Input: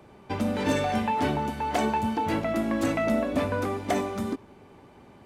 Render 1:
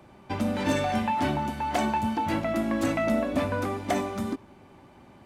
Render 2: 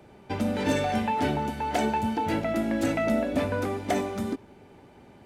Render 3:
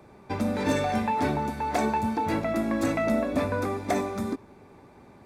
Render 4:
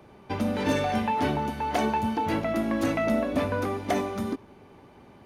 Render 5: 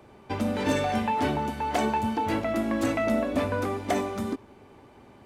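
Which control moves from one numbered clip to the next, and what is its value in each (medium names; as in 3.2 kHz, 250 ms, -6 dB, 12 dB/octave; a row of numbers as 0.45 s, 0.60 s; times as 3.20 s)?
band-stop, frequency: 440 Hz, 1.1 kHz, 3 kHz, 7.7 kHz, 170 Hz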